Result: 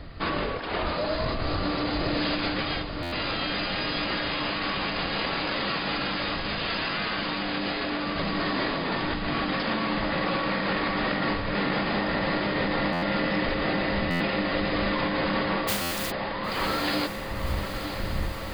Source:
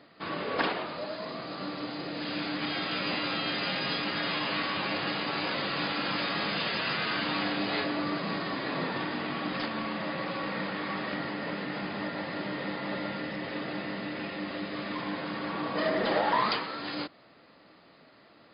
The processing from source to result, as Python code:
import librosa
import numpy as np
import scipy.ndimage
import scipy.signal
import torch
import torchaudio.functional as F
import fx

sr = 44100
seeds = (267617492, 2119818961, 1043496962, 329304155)

p1 = fx.spec_flatten(x, sr, power=0.11, at=(15.67, 16.1), fade=0.02)
p2 = fx.dmg_wind(p1, sr, seeds[0], corner_hz=91.0, level_db=-40.0)
p3 = fx.over_compress(p2, sr, threshold_db=-35.0, ratio=-1.0)
p4 = p3 + fx.echo_diffused(p3, sr, ms=1028, feedback_pct=76, wet_db=-9.0, dry=0)
p5 = fx.buffer_glitch(p4, sr, at_s=(3.02, 12.92, 14.1, 15.81), block=512, repeats=8)
y = p5 * 10.0 ** (6.0 / 20.0)